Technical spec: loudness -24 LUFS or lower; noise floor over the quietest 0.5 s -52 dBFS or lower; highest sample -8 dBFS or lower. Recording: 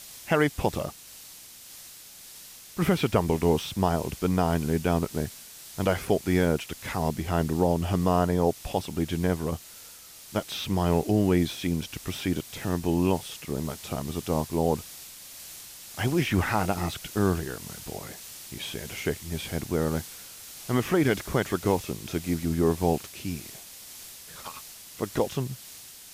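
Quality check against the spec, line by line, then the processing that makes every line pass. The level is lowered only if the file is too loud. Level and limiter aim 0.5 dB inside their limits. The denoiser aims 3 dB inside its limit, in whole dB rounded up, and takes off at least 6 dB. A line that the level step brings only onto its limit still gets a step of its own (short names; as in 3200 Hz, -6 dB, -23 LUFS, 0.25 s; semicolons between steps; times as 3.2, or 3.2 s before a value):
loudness -27.5 LUFS: OK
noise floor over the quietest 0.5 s -47 dBFS: fail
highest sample -9.5 dBFS: OK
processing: denoiser 8 dB, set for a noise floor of -47 dBFS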